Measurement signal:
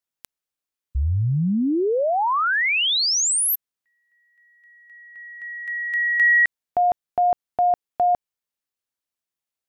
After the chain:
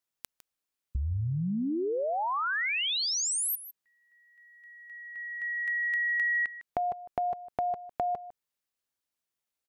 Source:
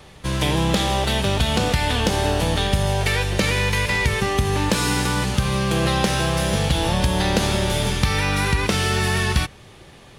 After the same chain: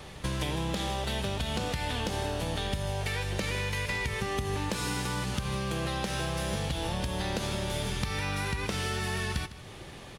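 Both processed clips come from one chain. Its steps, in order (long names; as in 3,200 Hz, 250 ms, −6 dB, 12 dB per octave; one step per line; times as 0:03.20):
downward compressor 5 to 1, threshold −30 dBFS
single-tap delay 155 ms −14.5 dB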